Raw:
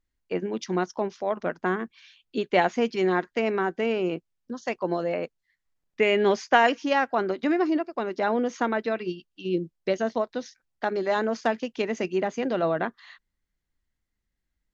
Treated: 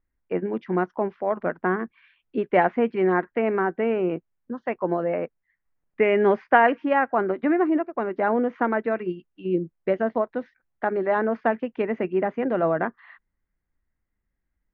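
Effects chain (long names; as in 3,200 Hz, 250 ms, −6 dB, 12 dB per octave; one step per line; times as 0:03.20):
low-pass filter 2,100 Hz 24 dB per octave
level +2.5 dB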